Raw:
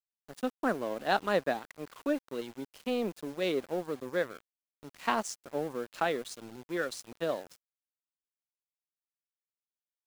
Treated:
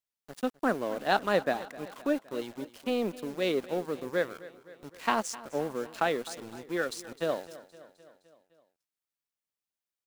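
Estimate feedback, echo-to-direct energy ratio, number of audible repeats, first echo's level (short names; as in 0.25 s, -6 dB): 60%, -16.0 dB, 4, -18.0 dB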